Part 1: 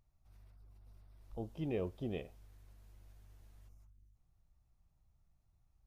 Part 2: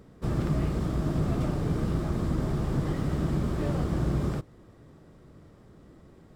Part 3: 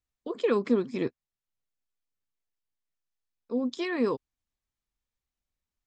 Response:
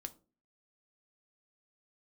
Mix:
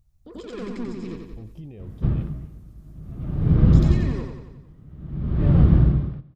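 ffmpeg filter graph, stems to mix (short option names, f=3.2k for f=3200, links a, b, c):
-filter_complex "[0:a]volume=-2dB[a];[1:a]lowpass=f=3.3k:w=0.5412,lowpass=f=3.3k:w=1.3066,aeval=exprs='val(0)*pow(10,-33*(0.5-0.5*cos(2*PI*0.52*n/s))/20)':c=same,adelay=1800,volume=2.5dB,asplit=2[b][c];[c]volume=-20.5dB[d];[2:a]asoftclip=type=tanh:threshold=-29dB,volume=-1.5dB,asplit=2[e][f];[f]volume=-4dB[g];[a][e]amix=inputs=2:normalize=0,alimiter=level_in=17dB:limit=-24dB:level=0:latency=1:release=25,volume=-17dB,volume=0dB[h];[d][g]amix=inputs=2:normalize=0,aecho=0:1:90|180|270|360|450|540|630|720:1|0.55|0.303|0.166|0.0915|0.0503|0.0277|0.0152[i];[b][h][i]amix=inputs=3:normalize=0,bass=f=250:g=14,treble=f=4k:g=7"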